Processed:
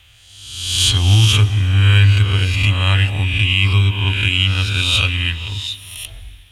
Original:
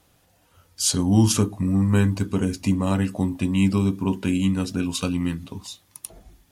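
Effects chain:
peak hold with a rise ahead of every peak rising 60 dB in 1.04 s
drawn EQ curve 110 Hz 0 dB, 180 Hz −25 dB, 1,000 Hz −12 dB, 3,200 Hz +9 dB, 4,800 Hz −13 dB
harmonic generator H 7 −38 dB, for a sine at −9 dBFS
convolution reverb RT60 3.1 s, pre-delay 86 ms, DRR 18 dB
boost into a limiter +15 dB
level −2.5 dB

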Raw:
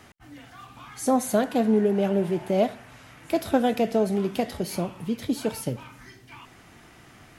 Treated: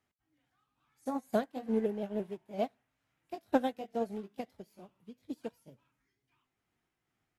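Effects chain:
pitch shifter swept by a sawtooth +1.5 semitones, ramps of 169 ms
expander for the loud parts 2.5 to 1, over −35 dBFS
level −4 dB

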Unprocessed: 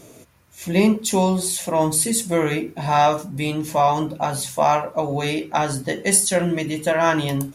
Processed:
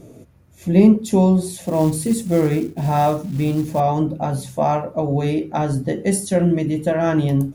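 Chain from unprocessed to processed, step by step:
tilt shelving filter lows +8.5 dB, about 710 Hz
notch filter 1,000 Hz, Q 13
0:01.64–0:03.80: log-companded quantiser 6 bits
level −1 dB

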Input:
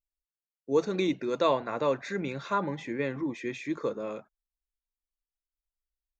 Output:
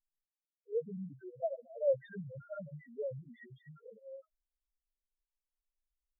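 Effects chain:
phaser with its sweep stopped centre 1,600 Hz, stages 8
spectral peaks only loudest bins 1
flanger whose copies keep moving one way rising 0.77 Hz
level +7.5 dB

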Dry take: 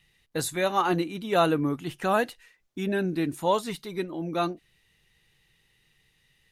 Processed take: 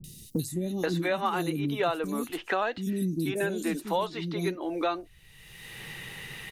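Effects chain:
high-shelf EQ 8,400 Hz +4.5 dB
three-band delay without the direct sound lows, highs, mids 40/480 ms, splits 310/4,900 Hz
multiband upward and downward compressor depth 100%
level −1.5 dB

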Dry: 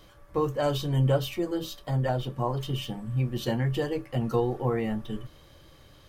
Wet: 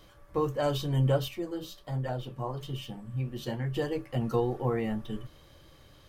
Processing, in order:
0:01.28–0:03.76: flanger 1.3 Hz, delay 5.9 ms, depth 9.2 ms, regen −68%
level −2 dB

